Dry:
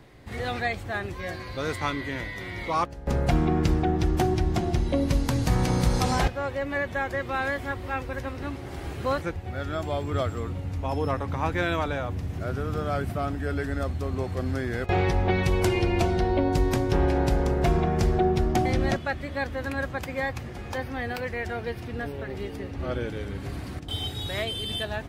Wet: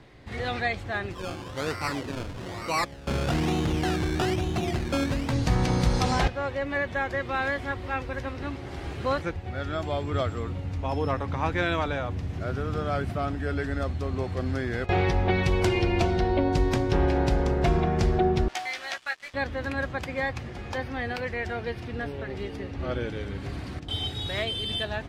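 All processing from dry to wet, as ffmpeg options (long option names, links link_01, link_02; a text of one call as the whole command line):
ffmpeg -i in.wav -filter_complex "[0:a]asettb=1/sr,asplit=3[link_01][link_02][link_03];[link_01]atrim=end=1.114[link_04];[link_02]atrim=start=1.11:end=5.33,asetpts=PTS-STARTPTS,afade=type=in:duration=0.004:curve=qsin,afade=type=out:start_time=4.216:duration=0.004:curve=qsin,highpass=74,acrusher=samples=18:mix=1:aa=0.000001:lfo=1:lforange=10.8:lforate=1.1,asoftclip=type=hard:threshold=-21dB[link_05];[link_03]atrim=start=5.326[link_06];[link_04][link_05]acrossfade=duration=0.004:curve1=hsin:curve2=qsin[link_07];[link_07][link_06]acrossfade=duration=0.004:curve1=qsin:curve2=hsin,asettb=1/sr,asplit=3[link_08][link_09][link_10];[link_08]atrim=end=18.484[link_11];[link_09]atrim=start=18.48:end=19.34,asetpts=PTS-STARTPTS,afade=type=in:duration=0.004:curve=qsin,afade=type=out:start_time=0.856:duration=0.004:curve=qsin,highpass=1300,acrusher=bits=6:mix=0:aa=0.5,asplit=2[link_12][link_13];[link_13]adelay=15,volume=-5dB[link_14];[link_12][link_14]amix=inputs=2:normalize=0,atrim=end_sample=37926[link_15];[link_10]atrim=start=19.336[link_16];[link_11][link_15]acrossfade=duration=0.004:curve1=hsin:curve2=qsin[link_17];[link_17][link_16]acrossfade=duration=0.004:curve1=qsin:curve2=hsin,lowpass=4100,aemphasis=mode=production:type=50fm" out.wav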